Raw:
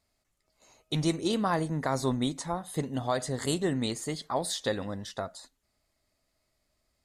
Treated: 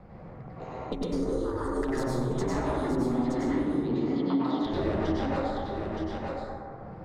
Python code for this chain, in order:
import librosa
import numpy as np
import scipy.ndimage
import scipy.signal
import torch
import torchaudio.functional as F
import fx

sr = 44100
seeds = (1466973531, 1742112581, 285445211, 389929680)

y = fx.env_lowpass(x, sr, base_hz=1300.0, full_db=-25.5)
y = fx.high_shelf(y, sr, hz=2000.0, db=-10.5)
y = fx.over_compress(y, sr, threshold_db=-35.0, ratio=-0.5)
y = y * np.sin(2.0 * np.pi * 120.0 * np.arange(len(y)) / sr)
y = fx.fixed_phaser(y, sr, hz=680.0, stages=6, at=(1.06, 1.88))
y = 10.0 ** (-35.0 / 20.0) * np.tanh(y / 10.0 ** (-35.0 / 20.0))
y = fx.cabinet(y, sr, low_hz=160.0, low_slope=24, high_hz=2900.0, hz=(280.0, 590.0, 1700.0, 2600.0), db=(10, -8, -9, -7), at=(2.77, 4.61))
y = y + 10.0 ** (-11.0 / 20.0) * np.pad(y, (int(920 * sr / 1000.0), 0))[:len(y)]
y = fx.rev_plate(y, sr, seeds[0], rt60_s=1.5, hf_ratio=0.35, predelay_ms=85, drr_db=-6.5)
y = fx.band_squash(y, sr, depth_pct=70)
y = F.gain(torch.from_numpy(y), 6.0).numpy()